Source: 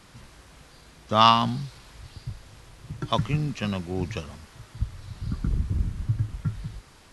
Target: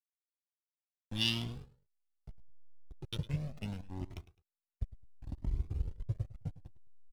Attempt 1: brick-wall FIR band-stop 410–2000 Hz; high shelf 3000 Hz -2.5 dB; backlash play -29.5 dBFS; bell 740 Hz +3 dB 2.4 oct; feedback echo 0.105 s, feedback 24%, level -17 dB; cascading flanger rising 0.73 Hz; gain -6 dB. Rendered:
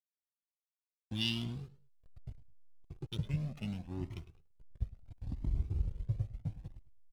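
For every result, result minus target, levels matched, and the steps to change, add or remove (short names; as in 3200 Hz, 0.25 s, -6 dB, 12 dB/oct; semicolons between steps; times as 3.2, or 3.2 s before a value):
8000 Hz band -4.5 dB; backlash: distortion -6 dB
change: high shelf 3000 Hz +4.5 dB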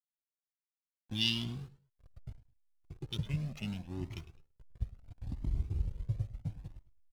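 backlash: distortion -7 dB
change: backlash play -22 dBFS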